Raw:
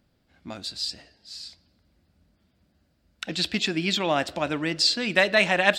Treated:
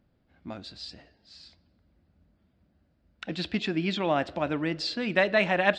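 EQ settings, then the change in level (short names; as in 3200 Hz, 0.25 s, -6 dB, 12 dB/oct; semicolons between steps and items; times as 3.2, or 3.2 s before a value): tape spacing loss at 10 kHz 24 dB; 0.0 dB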